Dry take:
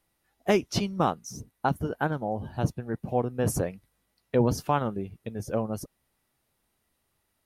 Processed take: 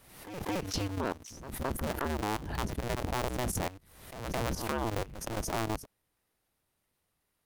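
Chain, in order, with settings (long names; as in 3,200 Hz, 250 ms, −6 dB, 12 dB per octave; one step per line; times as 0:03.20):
sub-harmonics by changed cycles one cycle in 2, inverted
dynamic equaliser 110 Hz, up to +4 dB, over −39 dBFS, Q 0.71
output level in coarse steps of 16 dB
echo ahead of the sound 216 ms −23 dB
background raised ahead of every attack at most 60 dB per second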